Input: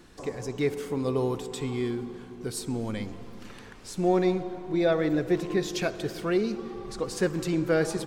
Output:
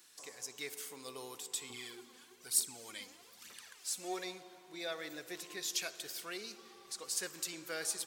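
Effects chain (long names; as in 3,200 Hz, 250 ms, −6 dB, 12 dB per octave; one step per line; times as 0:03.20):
first difference
0:01.70–0:04.24: phase shifter 1.1 Hz, delay 4.1 ms, feedback 59%
level +3 dB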